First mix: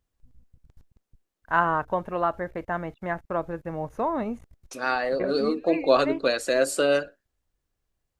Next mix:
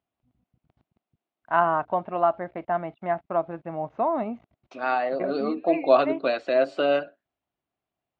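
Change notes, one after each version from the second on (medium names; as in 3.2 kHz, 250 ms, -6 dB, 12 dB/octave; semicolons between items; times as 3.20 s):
master: add cabinet simulation 170–3400 Hz, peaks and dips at 480 Hz -7 dB, 690 Hz +8 dB, 1.7 kHz -6 dB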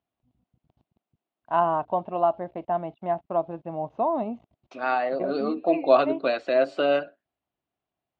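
first voice: add high-order bell 1.7 kHz -9.5 dB 1.1 oct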